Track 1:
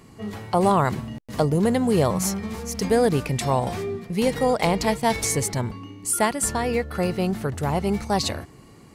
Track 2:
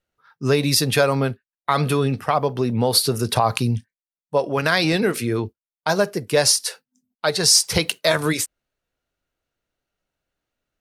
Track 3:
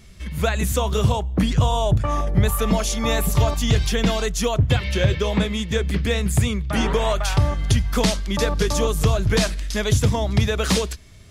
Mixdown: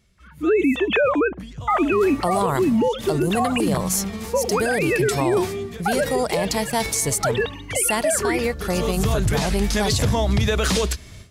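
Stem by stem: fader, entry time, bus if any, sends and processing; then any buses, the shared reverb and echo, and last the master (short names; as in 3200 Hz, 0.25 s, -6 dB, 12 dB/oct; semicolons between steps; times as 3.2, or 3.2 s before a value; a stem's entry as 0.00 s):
0.0 dB, 1.70 s, no bus, no send, high shelf 4000 Hz +9.5 dB
+2.0 dB, 0.00 s, bus A, no send, sine-wave speech
-14.0 dB, 0.00 s, bus A, no send, HPF 41 Hz 6 dB/oct; AGC; auto duck -13 dB, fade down 0.70 s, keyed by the second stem
bus A: 0.0 dB, AGC gain up to 14 dB; limiter -12 dBFS, peak gain reduction 11.5 dB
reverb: off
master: vocal rider within 4 dB 2 s; limiter -11.5 dBFS, peak gain reduction 8.5 dB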